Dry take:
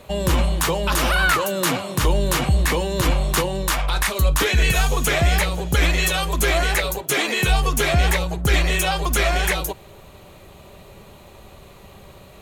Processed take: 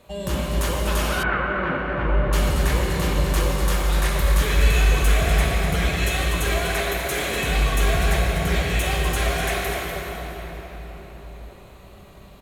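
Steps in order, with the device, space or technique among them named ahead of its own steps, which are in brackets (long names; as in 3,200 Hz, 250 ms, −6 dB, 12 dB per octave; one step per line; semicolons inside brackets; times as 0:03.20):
cave (single-tap delay 245 ms −8.5 dB; convolution reverb RT60 5.0 s, pre-delay 17 ms, DRR −4 dB)
0:01.23–0:02.33: low-pass filter 2,300 Hz 24 dB per octave
level −9 dB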